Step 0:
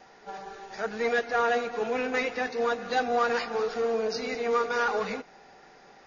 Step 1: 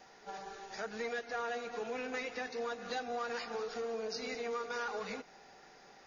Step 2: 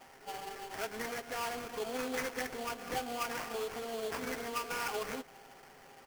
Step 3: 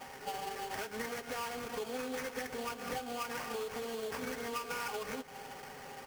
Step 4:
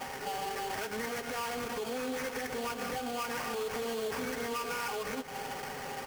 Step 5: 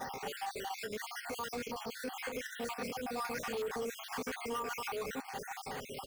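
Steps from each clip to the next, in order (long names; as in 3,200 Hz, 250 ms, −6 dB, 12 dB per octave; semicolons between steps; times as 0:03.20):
high-shelf EQ 4,300 Hz +8 dB; downward compressor 3 to 1, threshold −32 dBFS, peak gain reduction 9 dB; level −5.5 dB
comb filter 7.5 ms, depth 59%; sample-rate reduction 3,800 Hz, jitter 20%; level +1 dB
downward compressor 6 to 1, threshold −45 dBFS, peak gain reduction 13 dB; notch comb filter 340 Hz; level +9 dB
brickwall limiter −36 dBFS, peak gain reduction 9 dB; level +8 dB
time-frequency cells dropped at random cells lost 52%; in parallel at −9 dB: wave folding −35.5 dBFS; on the sum: level −2.5 dB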